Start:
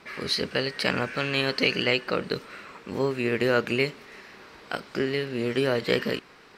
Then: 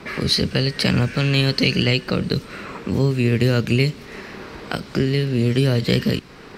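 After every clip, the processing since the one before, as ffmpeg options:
-filter_complex "[0:a]lowshelf=f=420:g=11,acrossover=split=180|3000[s0][s1][s2];[s1]acompressor=threshold=0.0158:ratio=2.5[s3];[s0][s3][s2]amix=inputs=3:normalize=0,volume=2.66"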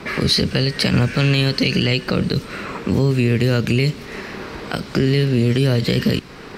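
-af "alimiter=level_in=3.35:limit=0.891:release=50:level=0:latency=1,volume=0.501"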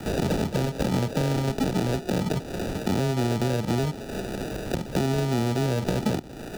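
-filter_complex "[0:a]acrusher=samples=41:mix=1:aa=0.000001,acrossover=split=250|810|3000|6500[s0][s1][s2][s3][s4];[s0]acompressor=threshold=0.0398:ratio=4[s5];[s1]acompressor=threshold=0.0501:ratio=4[s6];[s2]acompressor=threshold=0.00794:ratio=4[s7];[s3]acompressor=threshold=0.0112:ratio=4[s8];[s4]acompressor=threshold=0.00562:ratio=4[s9];[s5][s6][s7][s8][s9]amix=inputs=5:normalize=0"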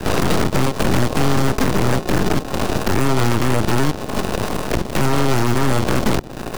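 -filter_complex "[0:a]asplit=2[s0][s1];[s1]asoftclip=type=tanh:threshold=0.0501,volume=0.531[s2];[s0][s2]amix=inputs=2:normalize=0,aeval=exprs='0.299*(cos(1*acos(clip(val(0)/0.299,-1,1)))-cos(1*PI/2))+0.106*(cos(8*acos(clip(val(0)/0.299,-1,1)))-cos(8*PI/2))':c=same,volume=1.26"

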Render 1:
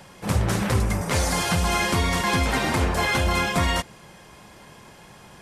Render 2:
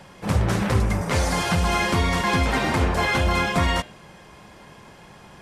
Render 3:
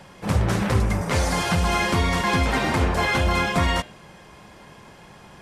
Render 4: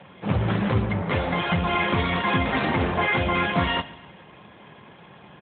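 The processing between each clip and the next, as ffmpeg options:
-af "highshelf=f=6300:g=-9,bandreject=f=121.4:t=h:w=4,bandreject=f=242.8:t=h:w=4,bandreject=f=364.2:t=h:w=4,bandreject=f=485.6:t=h:w=4,bandreject=f=607:t=h:w=4,bandreject=f=728.4:t=h:w=4,bandreject=f=849.8:t=h:w=4,bandreject=f=971.2:t=h:w=4,bandreject=f=1092.6:t=h:w=4,bandreject=f=1214:t=h:w=4,bandreject=f=1335.4:t=h:w=4,bandreject=f=1456.8:t=h:w=4,bandreject=f=1578.2:t=h:w=4,bandreject=f=1699.6:t=h:w=4,bandreject=f=1821:t=h:w=4,bandreject=f=1942.4:t=h:w=4,bandreject=f=2063.8:t=h:w=4,bandreject=f=2185.2:t=h:w=4,bandreject=f=2306.6:t=h:w=4,bandreject=f=2428:t=h:w=4,bandreject=f=2549.4:t=h:w=4,bandreject=f=2670.8:t=h:w=4,bandreject=f=2792.2:t=h:w=4,bandreject=f=2913.6:t=h:w=4,bandreject=f=3035:t=h:w=4,bandreject=f=3156.4:t=h:w=4,bandreject=f=3277.8:t=h:w=4,bandreject=f=3399.2:t=h:w=4,bandreject=f=3520.6:t=h:w=4,bandreject=f=3642:t=h:w=4,bandreject=f=3763.4:t=h:w=4,bandreject=f=3884.8:t=h:w=4,bandreject=f=4006.2:t=h:w=4,bandreject=f=4127.6:t=h:w=4,bandreject=f=4249:t=h:w=4,volume=1.19"
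-af anull
-af "crystalizer=i=1.5:c=0,aecho=1:1:139|278|417|556:0.112|0.0539|0.0259|0.0124" -ar 8000 -c:a libopencore_amrnb -b:a 12200

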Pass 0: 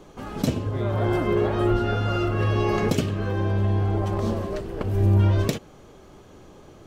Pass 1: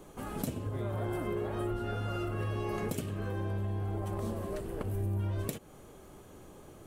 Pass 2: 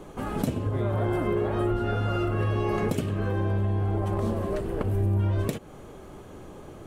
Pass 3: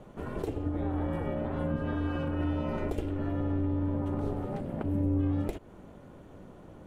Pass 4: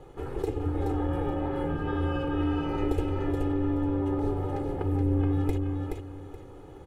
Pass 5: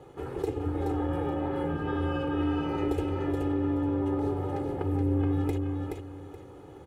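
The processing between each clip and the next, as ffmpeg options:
-af "highshelf=f=7300:t=q:w=1.5:g=10,acompressor=threshold=0.0355:ratio=3,volume=0.596"
-af "lowpass=f=3500:p=1,volume=2.66"
-af "bass=f=250:g=5,treble=f=4000:g=-6,aeval=exprs='val(0)*sin(2*PI*190*n/s)':c=same,volume=0.531"
-af "aecho=1:1:2.4:0.85,aecho=1:1:425|850|1275:0.631|0.151|0.0363"
-af "highpass=80"

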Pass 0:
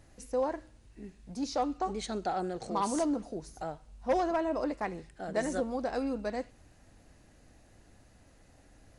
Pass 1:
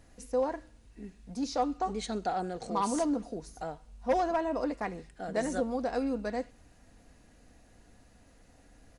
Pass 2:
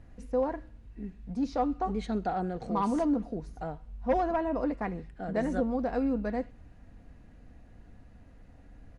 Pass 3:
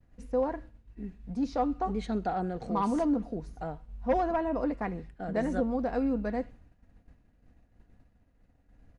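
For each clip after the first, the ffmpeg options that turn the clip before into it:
-af "aecho=1:1:4.2:0.3"
-af "bass=f=250:g=8,treble=f=4000:g=-15"
-af "agate=range=0.0224:threshold=0.00708:ratio=3:detection=peak"

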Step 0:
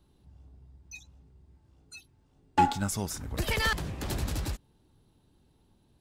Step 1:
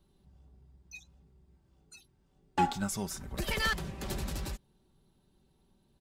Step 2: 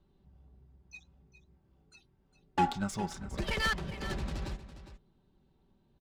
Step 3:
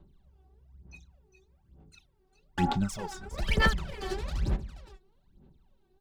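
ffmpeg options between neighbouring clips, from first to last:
-af "aecho=1:1:5.2:0.49,volume=0.631"
-af "adynamicsmooth=sensitivity=8:basefreq=3800,aecho=1:1:407:0.224"
-af "aphaser=in_gain=1:out_gain=1:delay=2.7:decay=0.8:speed=1.1:type=sinusoidal,volume=0.75"

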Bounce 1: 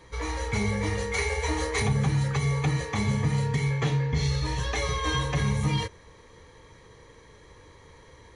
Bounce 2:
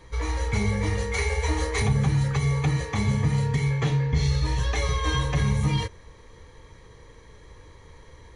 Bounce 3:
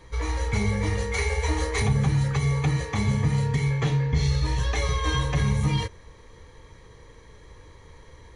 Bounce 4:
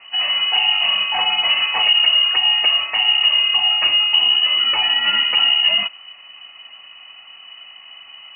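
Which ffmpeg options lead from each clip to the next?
-af "lowshelf=f=67:g=11.5"
-af "aeval=exprs='0.266*(cos(1*acos(clip(val(0)/0.266,-1,1)))-cos(1*PI/2))+0.00237*(cos(6*acos(clip(val(0)/0.266,-1,1)))-cos(6*PI/2))':c=same"
-af "lowpass=f=2600:t=q:w=0.5098,lowpass=f=2600:t=q:w=0.6013,lowpass=f=2600:t=q:w=0.9,lowpass=f=2600:t=q:w=2.563,afreqshift=-3000,volume=2.24"

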